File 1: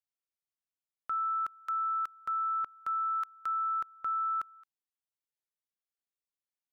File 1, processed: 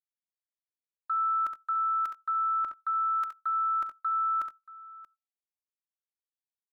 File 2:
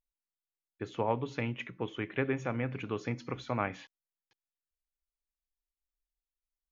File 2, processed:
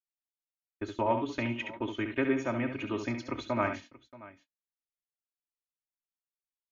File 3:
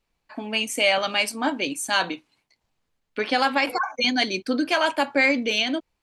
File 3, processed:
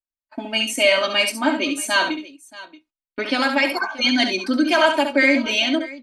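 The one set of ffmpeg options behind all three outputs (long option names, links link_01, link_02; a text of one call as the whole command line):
ffmpeg -i in.wav -af "agate=range=-33dB:threshold=-43dB:ratio=16:detection=peak,aecho=1:1:3.2:0.93,aecho=1:1:68|88|630:0.422|0.1|0.112" out.wav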